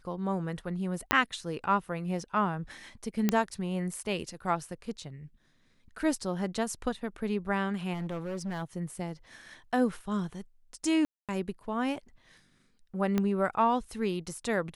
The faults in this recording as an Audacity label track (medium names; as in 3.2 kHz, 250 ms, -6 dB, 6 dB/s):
1.110000	1.110000	pop -7 dBFS
3.290000	3.290000	pop -11 dBFS
7.930000	8.630000	clipped -31 dBFS
11.050000	11.290000	dropout 237 ms
13.180000	13.180000	pop -15 dBFS